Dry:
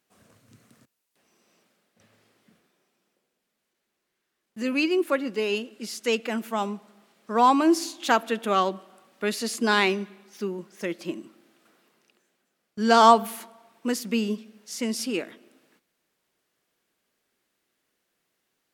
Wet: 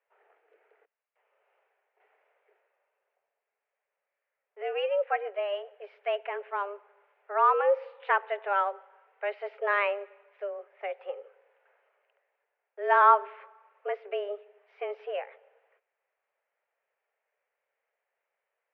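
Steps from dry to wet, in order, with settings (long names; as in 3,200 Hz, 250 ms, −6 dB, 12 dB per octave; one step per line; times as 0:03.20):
single-sideband voice off tune +200 Hz 240–2,300 Hz
level −4 dB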